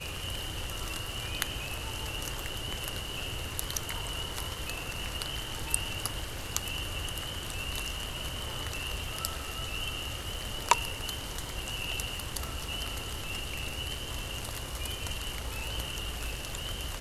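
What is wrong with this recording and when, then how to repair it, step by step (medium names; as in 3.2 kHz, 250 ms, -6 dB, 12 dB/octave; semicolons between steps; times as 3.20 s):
crackle 55 per s -41 dBFS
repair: de-click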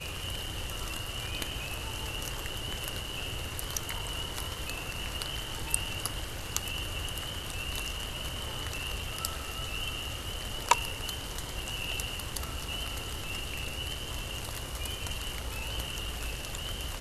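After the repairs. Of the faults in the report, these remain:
nothing left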